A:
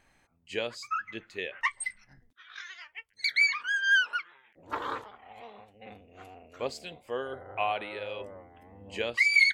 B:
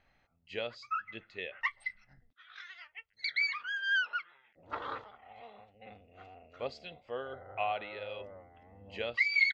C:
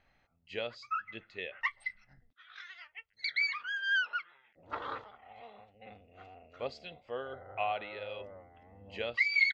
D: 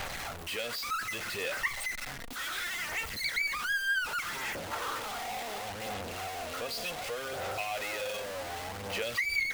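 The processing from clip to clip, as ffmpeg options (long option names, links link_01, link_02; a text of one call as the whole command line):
ffmpeg -i in.wav -af "lowpass=frequency=4800:width=0.5412,lowpass=frequency=4800:width=1.3066,aecho=1:1:1.5:0.31,volume=-5dB" out.wav
ffmpeg -i in.wav -af anull out.wav
ffmpeg -i in.wav -filter_complex "[0:a]aeval=exprs='val(0)+0.5*0.0266*sgn(val(0))':channel_layout=same,acrossover=split=460|1400[link_01][link_02][link_03];[link_01]acompressor=threshold=-48dB:ratio=4[link_04];[link_02]acompressor=threshold=-39dB:ratio=4[link_05];[link_03]acompressor=threshold=-31dB:ratio=4[link_06];[link_04][link_05][link_06]amix=inputs=3:normalize=0,aphaser=in_gain=1:out_gain=1:delay=4.3:decay=0.31:speed=0.67:type=sinusoidal" out.wav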